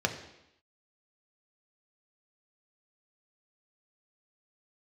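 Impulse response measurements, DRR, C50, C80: 3.5 dB, 10.0 dB, 12.0 dB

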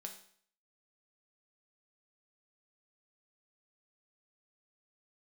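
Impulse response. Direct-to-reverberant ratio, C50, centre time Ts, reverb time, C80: 2.5 dB, 9.0 dB, 16 ms, 0.55 s, 12.5 dB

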